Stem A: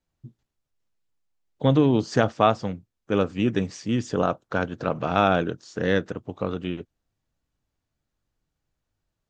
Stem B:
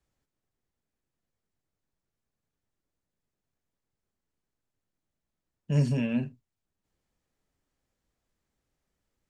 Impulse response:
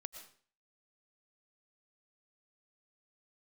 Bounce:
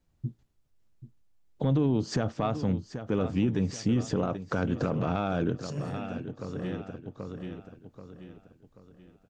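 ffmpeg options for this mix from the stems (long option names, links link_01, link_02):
-filter_complex "[0:a]lowshelf=frequency=380:gain=9,acompressor=threshold=-21dB:ratio=5,asoftclip=type=tanh:threshold=-9.5dB,volume=2dB,asplit=2[link_01][link_02];[link_02]volume=-14.5dB[link_03];[1:a]volume=-11.5dB,asplit=3[link_04][link_05][link_06];[link_05]volume=-11.5dB[link_07];[link_06]apad=whole_len=409827[link_08];[link_01][link_08]sidechaincompress=threshold=-50dB:ratio=8:attack=5.2:release=1310[link_09];[link_03][link_07]amix=inputs=2:normalize=0,aecho=0:1:783|1566|2349|3132|3915|4698:1|0.4|0.16|0.064|0.0256|0.0102[link_10];[link_09][link_04][link_10]amix=inputs=3:normalize=0,alimiter=limit=-17.5dB:level=0:latency=1:release=37"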